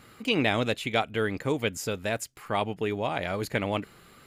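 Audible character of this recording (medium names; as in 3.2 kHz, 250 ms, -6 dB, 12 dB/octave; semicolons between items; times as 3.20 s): noise floor -55 dBFS; spectral tilt -4.5 dB/octave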